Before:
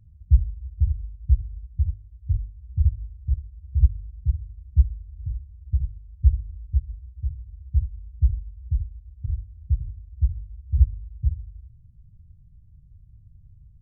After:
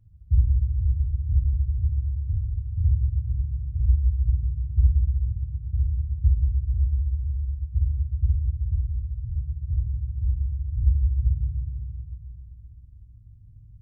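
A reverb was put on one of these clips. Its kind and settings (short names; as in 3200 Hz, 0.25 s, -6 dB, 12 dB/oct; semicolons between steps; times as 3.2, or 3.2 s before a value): FDN reverb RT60 2.7 s, low-frequency decay 1.4×, high-frequency decay 0.55×, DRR -3 dB; gain -5.5 dB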